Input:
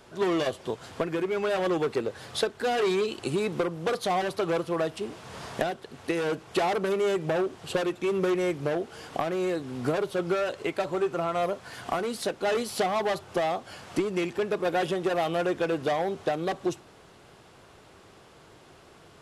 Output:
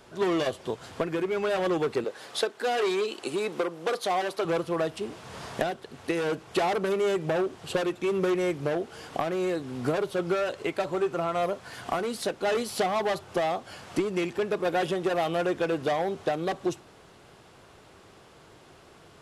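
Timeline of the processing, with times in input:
2.04–4.45 s: high-pass 300 Hz

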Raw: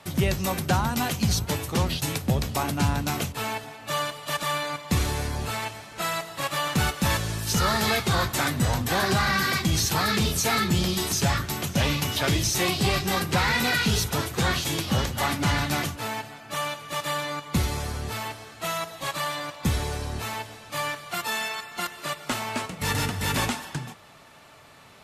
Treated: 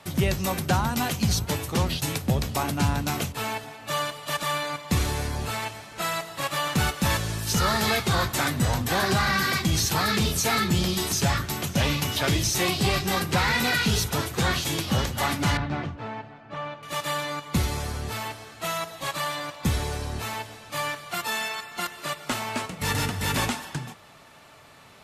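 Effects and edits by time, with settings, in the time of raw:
15.57–16.83 s: tape spacing loss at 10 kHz 37 dB

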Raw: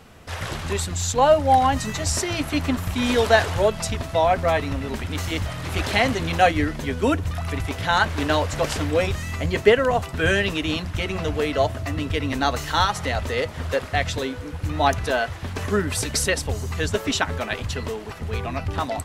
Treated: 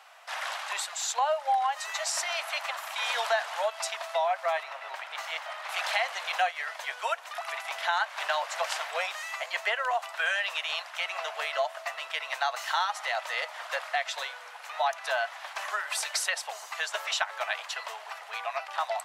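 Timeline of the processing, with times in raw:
4.63–5.69 s: peaking EQ 11 kHz -8.5 dB 2.5 oct
whole clip: steep high-pass 650 Hz 48 dB/octave; treble shelf 5.4 kHz -7 dB; compression 3:1, threshold -26 dBFS

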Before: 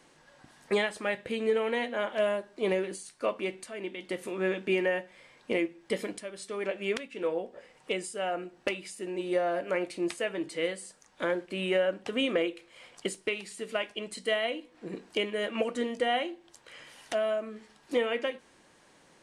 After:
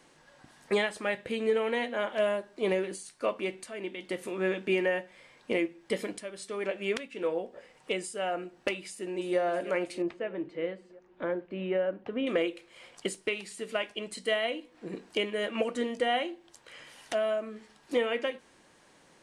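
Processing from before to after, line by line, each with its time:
8.89–9.39 s: echo throw 320 ms, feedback 75%, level -14 dB
10.02–12.27 s: tape spacing loss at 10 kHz 40 dB

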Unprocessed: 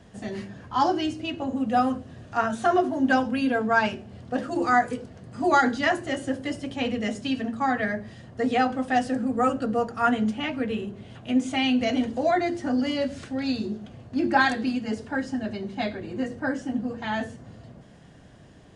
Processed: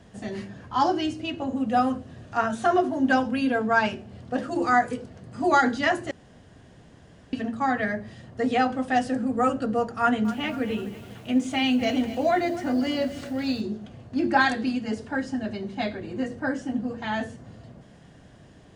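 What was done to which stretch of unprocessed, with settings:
6.11–7.33 s: room tone
10.00–13.61 s: bit-crushed delay 247 ms, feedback 55%, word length 7-bit, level -14.5 dB

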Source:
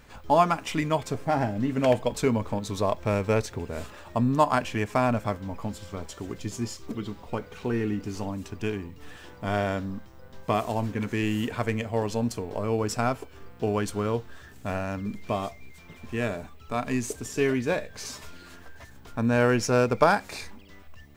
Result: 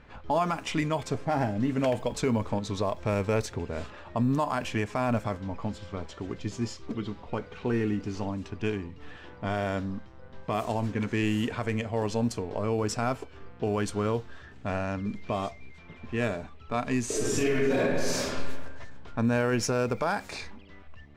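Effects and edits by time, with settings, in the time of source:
17.05–18.34 s: reverb throw, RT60 1.4 s, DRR -9.5 dB
whole clip: level-controlled noise filter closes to 2.8 kHz, open at -20.5 dBFS; peak limiter -17.5 dBFS

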